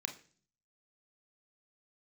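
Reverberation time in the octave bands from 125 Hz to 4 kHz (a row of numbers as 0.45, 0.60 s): 0.80, 0.70, 0.50, 0.40, 0.40, 0.50 s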